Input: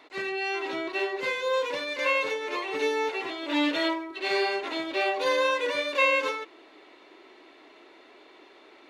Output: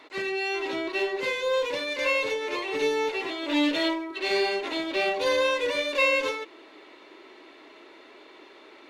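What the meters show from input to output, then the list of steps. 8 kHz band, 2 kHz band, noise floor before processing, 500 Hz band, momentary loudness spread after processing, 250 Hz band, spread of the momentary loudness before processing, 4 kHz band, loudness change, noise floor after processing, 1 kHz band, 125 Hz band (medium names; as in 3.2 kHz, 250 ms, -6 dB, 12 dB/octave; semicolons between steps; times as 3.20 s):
+3.0 dB, +0.5 dB, -54 dBFS, +1.5 dB, 6 LU, +2.5 dB, 7 LU, +2.0 dB, +1.0 dB, -51 dBFS, -2.0 dB, no reading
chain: dynamic bell 1.3 kHz, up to -6 dB, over -40 dBFS, Q 1.3; in parallel at -7 dB: one-sided clip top -33 dBFS; on the sum: band-stop 730 Hz, Q 12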